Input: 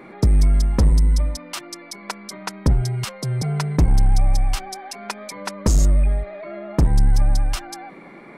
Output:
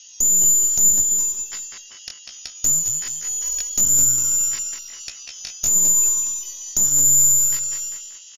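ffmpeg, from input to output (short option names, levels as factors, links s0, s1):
-filter_complex "[0:a]lowpass=f=3200:t=q:w=0.5098,lowpass=f=3200:t=q:w=0.6013,lowpass=f=3200:t=q:w=0.9,lowpass=f=3200:t=q:w=2.563,afreqshift=-3800,asplit=2[s0][s1];[s1]adelay=200,lowpass=f=2900:p=1,volume=0.631,asplit=2[s2][s3];[s3]adelay=200,lowpass=f=2900:p=1,volume=0.52,asplit=2[s4][s5];[s5]adelay=200,lowpass=f=2900:p=1,volume=0.52,asplit=2[s6][s7];[s7]adelay=200,lowpass=f=2900:p=1,volume=0.52,asplit=2[s8][s9];[s9]adelay=200,lowpass=f=2900:p=1,volume=0.52,asplit=2[s10][s11];[s11]adelay=200,lowpass=f=2900:p=1,volume=0.52,asplit=2[s12][s13];[s13]adelay=200,lowpass=f=2900:p=1,volume=0.52[s14];[s2][s4][s6][s8][s10][s12][s14]amix=inputs=7:normalize=0[s15];[s0][s15]amix=inputs=2:normalize=0,aeval=exprs='(tanh(2.82*val(0)+0.55)-tanh(0.55))/2.82':c=same,bandreject=f=2200:w=20,asetrate=83250,aresample=44100,atempo=0.529732,asplit=2[s16][s17];[s17]aecho=0:1:414:0.133[s18];[s16][s18]amix=inputs=2:normalize=0"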